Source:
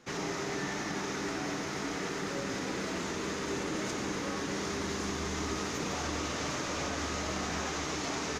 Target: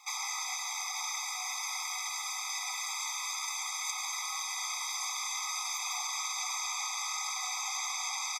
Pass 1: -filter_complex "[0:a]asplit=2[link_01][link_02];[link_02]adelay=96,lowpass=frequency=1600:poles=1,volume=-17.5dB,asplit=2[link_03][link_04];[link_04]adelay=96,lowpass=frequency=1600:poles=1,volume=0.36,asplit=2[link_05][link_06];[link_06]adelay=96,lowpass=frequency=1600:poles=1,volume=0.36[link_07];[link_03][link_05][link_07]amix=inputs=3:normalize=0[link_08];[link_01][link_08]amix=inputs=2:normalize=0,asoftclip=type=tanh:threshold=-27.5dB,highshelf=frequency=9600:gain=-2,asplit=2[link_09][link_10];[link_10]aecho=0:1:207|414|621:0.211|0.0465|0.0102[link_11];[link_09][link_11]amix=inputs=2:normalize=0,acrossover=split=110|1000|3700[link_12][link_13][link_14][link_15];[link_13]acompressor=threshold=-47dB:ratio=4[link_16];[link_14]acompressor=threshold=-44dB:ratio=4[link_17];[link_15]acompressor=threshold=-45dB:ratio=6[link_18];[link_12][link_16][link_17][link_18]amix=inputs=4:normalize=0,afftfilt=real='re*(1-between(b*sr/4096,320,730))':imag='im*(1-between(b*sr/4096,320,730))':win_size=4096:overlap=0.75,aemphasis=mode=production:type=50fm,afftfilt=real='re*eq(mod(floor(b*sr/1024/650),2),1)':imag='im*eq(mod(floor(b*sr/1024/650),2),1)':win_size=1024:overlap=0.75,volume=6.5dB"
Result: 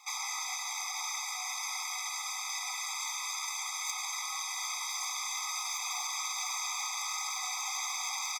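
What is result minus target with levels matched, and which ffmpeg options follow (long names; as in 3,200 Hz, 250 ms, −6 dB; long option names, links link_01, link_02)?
soft clipping: distortion +17 dB
-filter_complex "[0:a]asplit=2[link_01][link_02];[link_02]adelay=96,lowpass=frequency=1600:poles=1,volume=-17.5dB,asplit=2[link_03][link_04];[link_04]adelay=96,lowpass=frequency=1600:poles=1,volume=0.36,asplit=2[link_05][link_06];[link_06]adelay=96,lowpass=frequency=1600:poles=1,volume=0.36[link_07];[link_03][link_05][link_07]amix=inputs=3:normalize=0[link_08];[link_01][link_08]amix=inputs=2:normalize=0,asoftclip=type=tanh:threshold=-17.5dB,highshelf=frequency=9600:gain=-2,asplit=2[link_09][link_10];[link_10]aecho=0:1:207|414|621:0.211|0.0465|0.0102[link_11];[link_09][link_11]amix=inputs=2:normalize=0,acrossover=split=110|1000|3700[link_12][link_13][link_14][link_15];[link_13]acompressor=threshold=-47dB:ratio=4[link_16];[link_14]acompressor=threshold=-44dB:ratio=4[link_17];[link_15]acompressor=threshold=-45dB:ratio=6[link_18];[link_12][link_16][link_17][link_18]amix=inputs=4:normalize=0,afftfilt=real='re*(1-between(b*sr/4096,320,730))':imag='im*(1-between(b*sr/4096,320,730))':win_size=4096:overlap=0.75,aemphasis=mode=production:type=50fm,afftfilt=real='re*eq(mod(floor(b*sr/1024/650),2),1)':imag='im*eq(mod(floor(b*sr/1024/650),2),1)':win_size=1024:overlap=0.75,volume=6.5dB"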